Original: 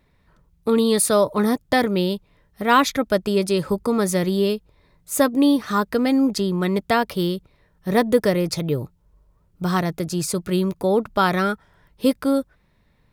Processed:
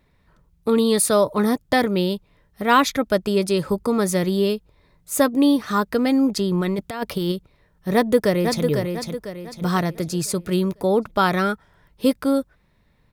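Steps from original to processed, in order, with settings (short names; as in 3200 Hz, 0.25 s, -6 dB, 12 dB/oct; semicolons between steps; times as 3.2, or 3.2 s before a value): 6.51–7.32 negative-ratio compressor -22 dBFS, ratio -0.5; 7.94–8.64 echo throw 0.5 s, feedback 40%, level -5.5 dB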